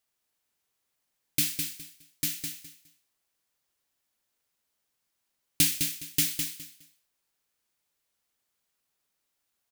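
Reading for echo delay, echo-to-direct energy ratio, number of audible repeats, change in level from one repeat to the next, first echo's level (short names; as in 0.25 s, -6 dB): 0.207 s, -6.0 dB, 3, -13.0 dB, -6.0 dB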